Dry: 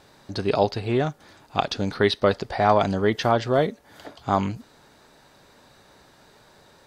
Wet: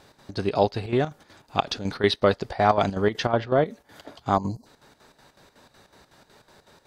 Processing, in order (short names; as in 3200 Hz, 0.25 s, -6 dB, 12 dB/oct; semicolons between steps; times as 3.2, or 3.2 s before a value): 4.37–4.66 spectral gain 1100–4000 Hz -25 dB; chopper 5.4 Hz, depth 65%, duty 65%; 3.12–3.66 treble ducked by the level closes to 2400 Hz, closed at -19 dBFS